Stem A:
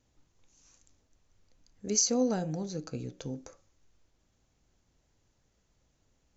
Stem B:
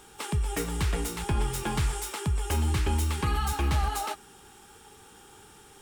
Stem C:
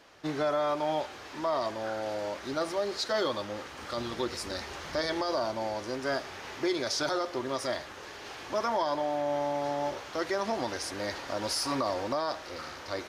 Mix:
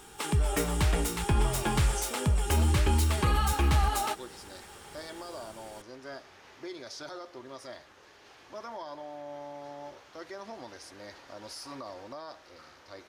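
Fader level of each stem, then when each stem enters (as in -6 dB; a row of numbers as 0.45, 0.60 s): -15.0, +1.5, -12.0 dB; 0.00, 0.00, 0.00 s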